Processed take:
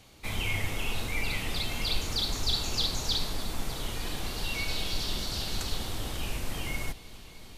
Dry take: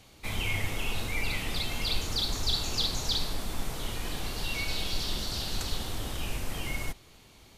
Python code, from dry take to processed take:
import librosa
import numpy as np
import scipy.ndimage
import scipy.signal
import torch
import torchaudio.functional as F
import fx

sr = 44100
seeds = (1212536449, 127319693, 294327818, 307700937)

y = fx.echo_heads(x, sr, ms=306, heads='all three', feedback_pct=66, wet_db=-23.5)